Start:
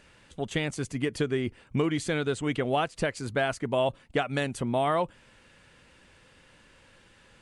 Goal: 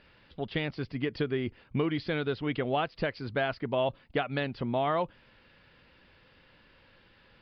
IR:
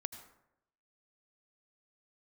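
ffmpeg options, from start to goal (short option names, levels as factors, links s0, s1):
-af "aresample=11025,aresample=44100,volume=0.75"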